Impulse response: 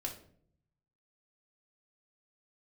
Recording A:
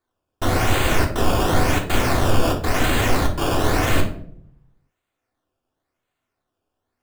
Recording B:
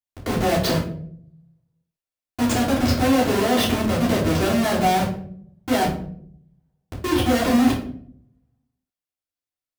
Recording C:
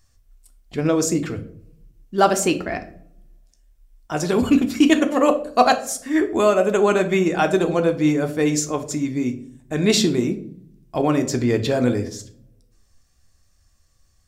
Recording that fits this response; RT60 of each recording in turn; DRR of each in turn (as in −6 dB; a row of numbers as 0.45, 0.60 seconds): A; 0.60, 0.60, 0.60 seconds; −0.5, −10.0, 5.5 decibels